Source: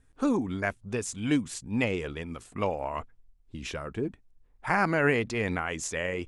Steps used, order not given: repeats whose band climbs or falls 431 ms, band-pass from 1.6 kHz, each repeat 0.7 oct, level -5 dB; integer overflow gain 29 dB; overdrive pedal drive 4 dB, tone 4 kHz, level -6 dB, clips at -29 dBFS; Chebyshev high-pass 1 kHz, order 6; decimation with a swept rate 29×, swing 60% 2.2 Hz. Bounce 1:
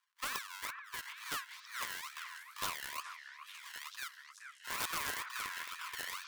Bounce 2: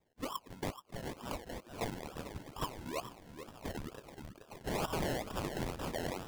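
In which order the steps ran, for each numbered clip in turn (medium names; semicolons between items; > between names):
overdrive pedal > decimation with a swept rate > Chebyshev high-pass > integer overflow > repeats whose band climbs or falls; Chebyshev high-pass > overdrive pedal > integer overflow > repeats whose band climbs or falls > decimation with a swept rate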